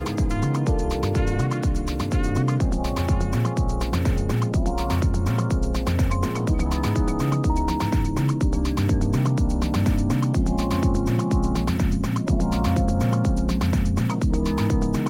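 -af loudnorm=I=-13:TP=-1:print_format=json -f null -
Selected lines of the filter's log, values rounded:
"input_i" : "-23.0",
"input_tp" : "-7.8",
"input_lra" : "1.2",
"input_thresh" : "-33.0",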